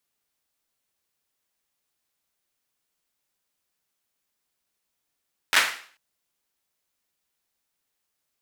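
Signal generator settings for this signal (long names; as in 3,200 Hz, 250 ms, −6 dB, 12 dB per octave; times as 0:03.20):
synth clap length 0.44 s, apart 11 ms, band 1,800 Hz, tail 0.47 s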